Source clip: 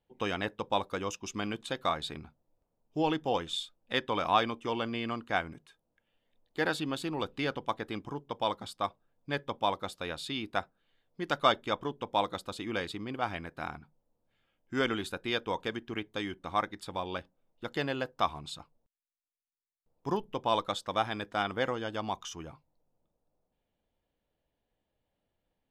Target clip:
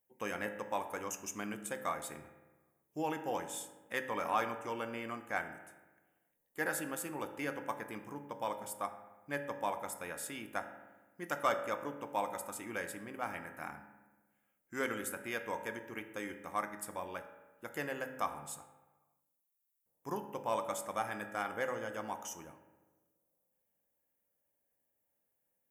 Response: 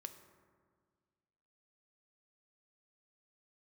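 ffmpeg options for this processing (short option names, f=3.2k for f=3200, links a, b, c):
-filter_complex "[0:a]equalizer=f=2k:t=o:w=1:g=6,equalizer=f=4k:t=o:w=1:g=-11,equalizer=f=8k:t=o:w=1:g=-5[a];[1:a]atrim=start_sample=2205,asetrate=66150,aresample=44100[b];[a][b]afir=irnorm=-1:irlink=0,aexciter=amount=12:drive=2.3:freq=5.8k,highpass=f=190:p=1,asplit=2[c][d];[d]asoftclip=type=hard:threshold=-29dB,volume=-11dB[e];[c][e]amix=inputs=2:normalize=0"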